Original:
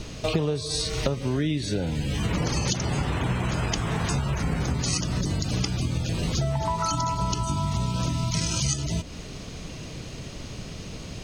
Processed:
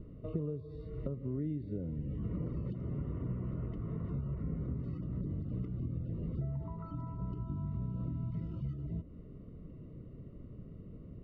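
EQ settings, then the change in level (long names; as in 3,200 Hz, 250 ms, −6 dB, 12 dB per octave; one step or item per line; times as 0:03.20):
moving average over 54 samples
high-frequency loss of the air 420 metres
low-shelf EQ 160 Hz −4.5 dB
−7.0 dB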